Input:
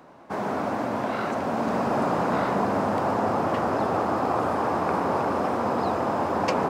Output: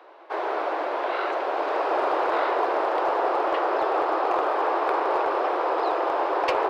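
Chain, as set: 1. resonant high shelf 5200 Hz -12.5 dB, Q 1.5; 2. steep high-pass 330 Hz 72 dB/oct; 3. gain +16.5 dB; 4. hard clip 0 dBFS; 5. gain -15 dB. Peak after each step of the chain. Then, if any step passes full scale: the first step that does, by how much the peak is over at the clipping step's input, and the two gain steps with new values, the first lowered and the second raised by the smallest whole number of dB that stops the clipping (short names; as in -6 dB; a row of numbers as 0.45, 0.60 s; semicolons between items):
-8.0, -11.5, +5.0, 0.0, -15.0 dBFS; step 3, 5.0 dB; step 3 +11.5 dB, step 5 -10 dB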